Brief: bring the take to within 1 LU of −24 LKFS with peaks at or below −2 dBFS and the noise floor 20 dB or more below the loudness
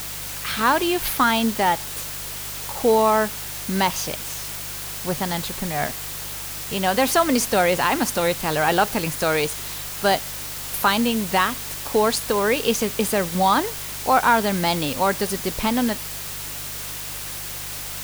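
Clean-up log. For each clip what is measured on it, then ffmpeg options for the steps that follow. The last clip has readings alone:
mains hum 50 Hz; hum harmonics up to 150 Hz; level of the hum −41 dBFS; background noise floor −32 dBFS; target noise floor −42 dBFS; integrated loudness −22.0 LKFS; sample peak −5.5 dBFS; target loudness −24.0 LKFS
→ -af "bandreject=frequency=50:width_type=h:width=4,bandreject=frequency=100:width_type=h:width=4,bandreject=frequency=150:width_type=h:width=4"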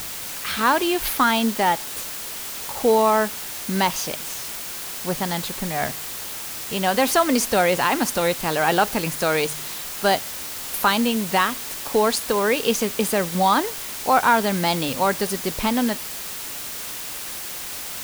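mains hum none found; background noise floor −32 dBFS; target noise floor −42 dBFS
→ -af "afftdn=noise_reduction=10:noise_floor=-32"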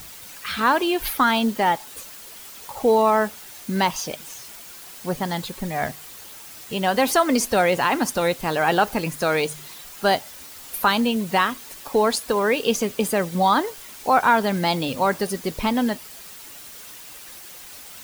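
background noise floor −41 dBFS; target noise floor −42 dBFS
→ -af "afftdn=noise_reduction=6:noise_floor=-41"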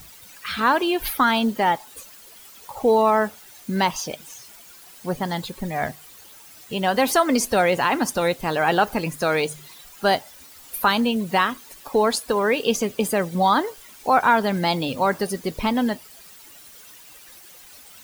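background noise floor −46 dBFS; integrated loudness −22.0 LKFS; sample peak −6.5 dBFS; target loudness −24.0 LKFS
→ -af "volume=-2dB"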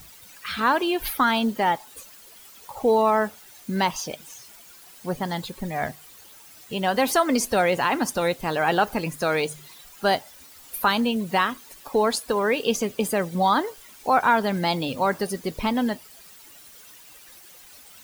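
integrated loudness −24.0 LKFS; sample peak −8.5 dBFS; background noise floor −48 dBFS

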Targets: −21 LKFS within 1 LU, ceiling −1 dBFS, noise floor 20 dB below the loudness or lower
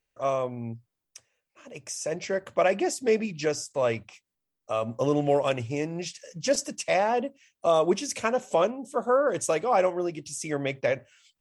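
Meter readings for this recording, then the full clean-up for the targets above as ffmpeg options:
integrated loudness −27.0 LKFS; sample peak −10.5 dBFS; target loudness −21.0 LKFS
→ -af "volume=6dB"

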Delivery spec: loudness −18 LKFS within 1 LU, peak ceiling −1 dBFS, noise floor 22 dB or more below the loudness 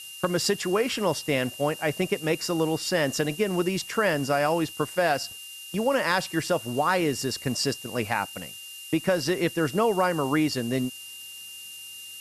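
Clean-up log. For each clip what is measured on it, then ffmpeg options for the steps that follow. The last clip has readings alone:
interfering tone 2,800 Hz; level of the tone −41 dBFS; background noise floor −42 dBFS; target noise floor −48 dBFS; integrated loudness −26.0 LKFS; sample peak −11.5 dBFS; target loudness −18.0 LKFS
→ -af "bandreject=frequency=2800:width=30"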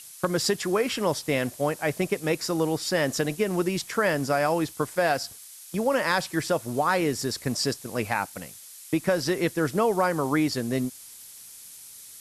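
interfering tone none found; background noise floor −46 dBFS; target noise floor −48 dBFS
→ -af "afftdn=noise_reduction=6:noise_floor=-46"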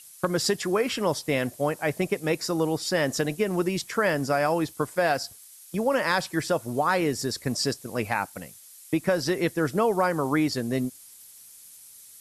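background noise floor −49 dBFS; integrated loudness −26.5 LKFS; sample peak −11.5 dBFS; target loudness −18.0 LKFS
→ -af "volume=8.5dB"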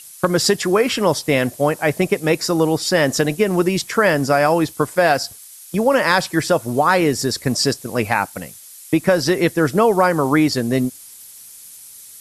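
integrated loudness −18.0 LKFS; sample peak −3.0 dBFS; background noise floor −41 dBFS

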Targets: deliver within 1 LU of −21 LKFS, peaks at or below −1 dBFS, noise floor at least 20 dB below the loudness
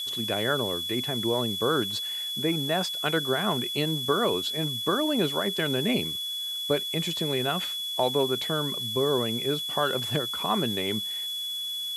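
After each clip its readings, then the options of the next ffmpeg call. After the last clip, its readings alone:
interfering tone 3,400 Hz; level of the tone −30 dBFS; background noise floor −33 dBFS; target noise floor −47 dBFS; integrated loudness −26.5 LKFS; sample peak −10.5 dBFS; target loudness −21.0 LKFS
→ -af "bandreject=frequency=3400:width=30"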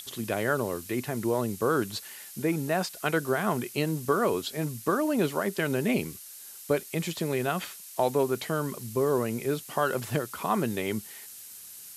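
interfering tone none found; background noise floor −46 dBFS; target noise floor −49 dBFS
→ -af "afftdn=noise_reduction=6:noise_floor=-46"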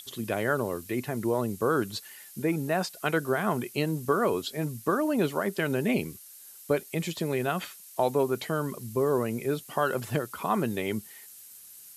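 background noise floor −49 dBFS; integrated loudness −29.0 LKFS; sample peak −12.0 dBFS; target loudness −21.0 LKFS
→ -af "volume=8dB"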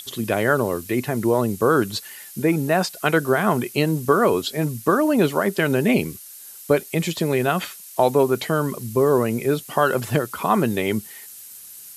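integrated loudness −21.0 LKFS; sample peak −4.0 dBFS; background noise floor −41 dBFS

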